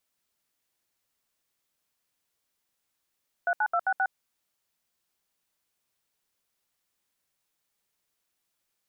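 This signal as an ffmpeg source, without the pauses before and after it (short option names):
-f lavfi -i "aevalsrc='0.0562*clip(min(mod(t,0.132),0.061-mod(t,0.132))/0.002,0,1)*(eq(floor(t/0.132),0)*(sin(2*PI*697*mod(t,0.132))+sin(2*PI*1477*mod(t,0.132)))+eq(floor(t/0.132),1)*(sin(2*PI*852*mod(t,0.132))+sin(2*PI*1477*mod(t,0.132)))+eq(floor(t/0.132),2)*(sin(2*PI*697*mod(t,0.132))+sin(2*PI*1336*mod(t,0.132)))+eq(floor(t/0.132),3)*(sin(2*PI*770*mod(t,0.132))+sin(2*PI*1477*mod(t,0.132)))+eq(floor(t/0.132),4)*(sin(2*PI*770*mod(t,0.132))+sin(2*PI*1477*mod(t,0.132))))':d=0.66:s=44100"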